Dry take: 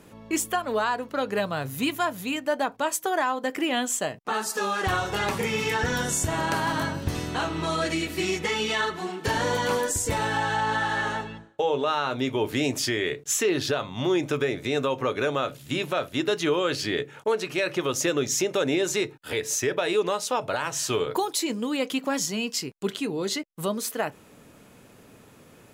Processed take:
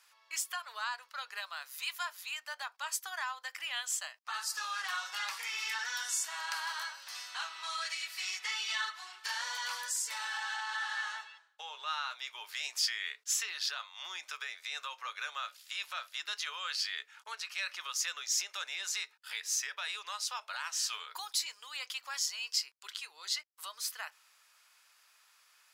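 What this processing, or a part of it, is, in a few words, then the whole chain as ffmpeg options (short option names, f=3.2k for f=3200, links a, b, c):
headphones lying on a table: -af "highpass=f=1.1k:w=0.5412,highpass=f=1.1k:w=1.3066,equalizer=f=4.9k:t=o:w=0.53:g=8.5,volume=-8dB"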